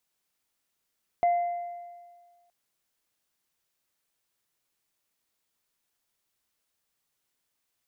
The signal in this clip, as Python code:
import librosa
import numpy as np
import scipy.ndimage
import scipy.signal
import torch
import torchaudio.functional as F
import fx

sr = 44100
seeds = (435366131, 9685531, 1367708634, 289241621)

y = fx.additive_free(sr, length_s=1.27, hz=699.0, level_db=-18.5, upper_db=(-20,), decay_s=1.66, upper_decays_s=(1.39,), upper_hz=(2060.0,))